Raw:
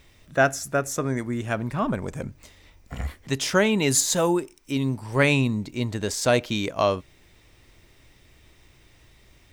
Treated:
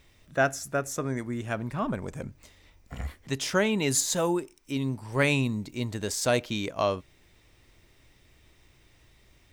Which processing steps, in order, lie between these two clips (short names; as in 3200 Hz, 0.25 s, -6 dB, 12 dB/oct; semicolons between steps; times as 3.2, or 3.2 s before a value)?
5.18–6.42 high shelf 6900 Hz +5.5 dB; gain -4.5 dB